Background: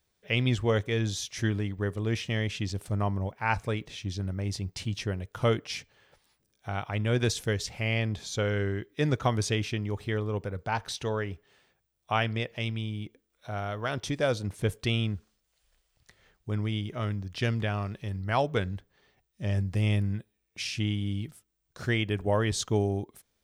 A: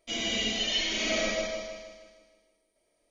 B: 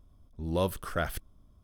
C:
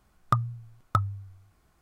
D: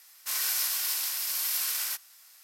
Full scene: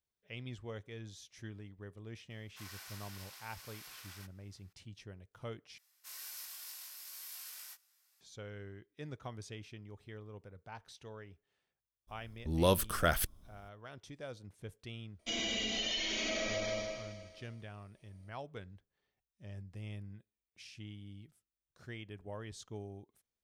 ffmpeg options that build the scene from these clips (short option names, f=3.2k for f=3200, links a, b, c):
-filter_complex "[4:a]asplit=2[a][b];[0:a]volume=-19dB[c];[a]lowpass=f=1.8k:p=1[d];[b]flanger=delay=18.5:depth=2.4:speed=1.3[e];[2:a]highshelf=f=2.8k:g=8[f];[1:a]acompressor=threshold=-31dB:ratio=6:attack=3.2:release=140:knee=1:detection=peak[g];[c]asplit=2[h][i];[h]atrim=end=5.784[j];[e]atrim=end=2.43,asetpts=PTS-STARTPTS,volume=-15dB[k];[i]atrim=start=8.206[l];[d]atrim=end=2.43,asetpts=PTS-STARTPTS,volume=-11.5dB,afade=t=in:d=0.004:c=hsin,afade=t=out:st=2.426:d=0.004:c=hsin,adelay=2300[m];[f]atrim=end=1.63,asetpts=PTS-STARTPTS,afade=t=in:d=0.02,afade=t=out:st=1.61:d=0.02,adelay=12070[n];[g]atrim=end=3.1,asetpts=PTS-STARTPTS,volume=-1dB,afade=t=in:d=0.004:c=hsin,afade=t=out:st=3.096:d=0.004:c=hsin,adelay=15190[o];[j][k]acrossfade=d=0.004:c1=hsin:c2=hsin[p];[p][l]acrossfade=d=0.004:c1=hsin:c2=hsin[q];[q][m][n][o]amix=inputs=4:normalize=0"